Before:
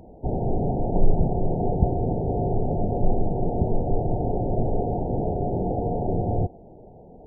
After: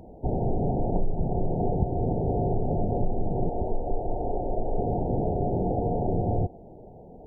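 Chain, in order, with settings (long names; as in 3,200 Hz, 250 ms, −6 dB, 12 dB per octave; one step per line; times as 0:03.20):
0:03.49–0:04.78: parametric band 140 Hz −13 dB 1.7 octaves
downward compressor 6 to 1, threshold −20 dBFS, peak gain reduction 10 dB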